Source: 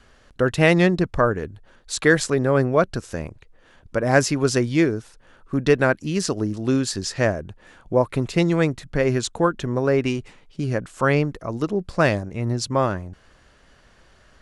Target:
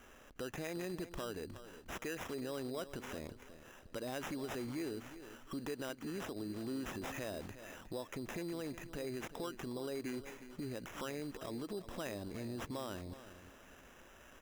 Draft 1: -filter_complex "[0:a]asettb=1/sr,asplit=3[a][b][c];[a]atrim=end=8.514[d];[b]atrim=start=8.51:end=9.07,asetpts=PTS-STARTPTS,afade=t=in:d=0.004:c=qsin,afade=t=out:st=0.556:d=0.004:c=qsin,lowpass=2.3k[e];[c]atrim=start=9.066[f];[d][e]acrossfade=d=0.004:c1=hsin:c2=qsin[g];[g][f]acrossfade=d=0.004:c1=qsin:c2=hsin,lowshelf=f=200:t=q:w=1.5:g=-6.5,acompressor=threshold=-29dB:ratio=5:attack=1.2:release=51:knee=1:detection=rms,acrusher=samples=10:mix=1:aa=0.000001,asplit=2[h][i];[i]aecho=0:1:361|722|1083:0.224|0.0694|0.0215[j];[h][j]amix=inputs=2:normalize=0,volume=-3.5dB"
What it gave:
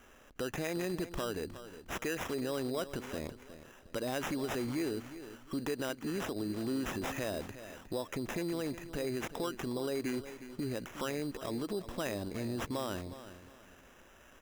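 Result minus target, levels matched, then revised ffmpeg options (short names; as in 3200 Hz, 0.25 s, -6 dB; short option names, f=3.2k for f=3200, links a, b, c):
compressor: peak gain reduction -6 dB
-filter_complex "[0:a]asettb=1/sr,asplit=3[a][b][c];[a]atrim=end=8.514[d];[b]atrim=start=8.51:end=9.07,asetpts=PTS-STARTPTS,afade=t=in:d=0.004:c=qsin,afade=t=out:st=0.556:d=0.004:c=qsin,lowpass=2.3k[e];[c]atrim=start=9.066[f];[d][e]acrossfade=d=0.004:c1=hsin:c2=qsin[g];[g][f]acrossfade=d=0.004:c1=qsin:c2=hsin,lowshelf=f=200:t=q:w=1.5:g=-6.5,acompressor=threshold=-36.5dB:ratio=5:attack=1.2:release=51:knee=1:detection=rms,acrusher=samples=10:mix=1:aa=0.000001,asplit=2[h][i];[i]aecho=0:1:361|722|1083:0.224|0.0694|0.0215[j];[h][j]amix=inputs=2:normalize=0,volume=-3.5dB"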